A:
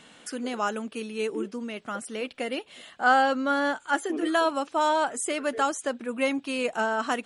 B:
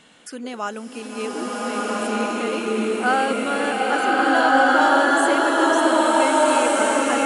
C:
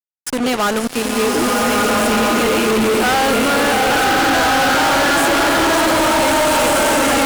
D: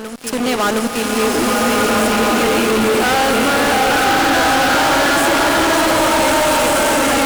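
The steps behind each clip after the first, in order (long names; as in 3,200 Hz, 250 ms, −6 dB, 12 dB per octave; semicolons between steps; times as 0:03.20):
slow-attack reverb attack 1,600 ms, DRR −8 dB
fuzz pedal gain 37 dB, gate −35 dBFS
backwards echo 716 ms −9.5 dB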